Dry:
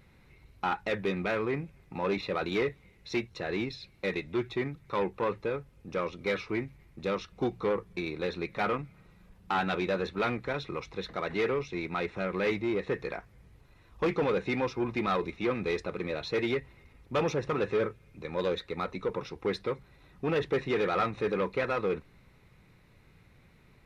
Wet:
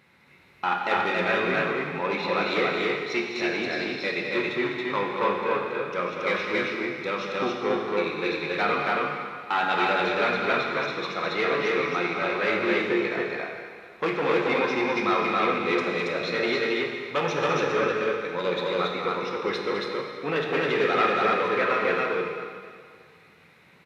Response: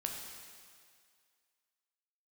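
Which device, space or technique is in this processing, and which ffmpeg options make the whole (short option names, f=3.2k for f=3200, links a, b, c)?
stadium PA: -filter_complex "[0:a]highpass=170,equalizer=f=2k:t=o:w=2.8:g=7,aecho=1:1:207|277:0.355|0.891[a];[1:a]atrim=start_sample=2205[b];[a][b]afir=irnorm=-1:irlink=0"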